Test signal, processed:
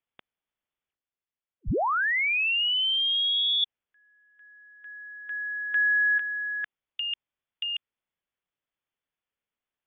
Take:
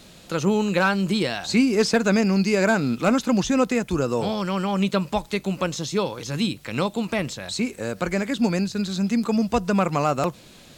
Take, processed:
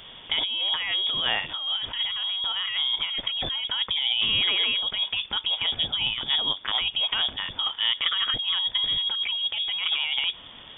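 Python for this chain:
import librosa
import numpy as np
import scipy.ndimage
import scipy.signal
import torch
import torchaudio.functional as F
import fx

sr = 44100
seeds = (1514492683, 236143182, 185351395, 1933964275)

y = fx.over_compress(x, sr, threshold_db=-26.0, ratio=-1.0)
y = fx.freq_invert(y, sr, carrier_hz=3500)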